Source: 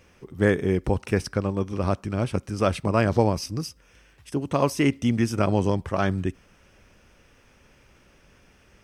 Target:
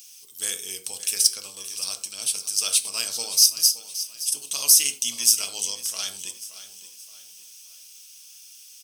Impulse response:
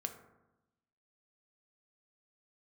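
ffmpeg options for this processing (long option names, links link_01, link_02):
-filter_complex "[0:a]aexciter=amount=6.4:drive=8.7:freq=2800,aderivative,aecho=1:1:573|1146|1719|2292:0.2|0.0758|0.0288|0.0109[link_01];[1:a]atrim=start_sample=2205,atrim=end_sample=4410[link_02];[link_01][link_02]afir=irnorm=-1:irlink=0,volume=1.5dB"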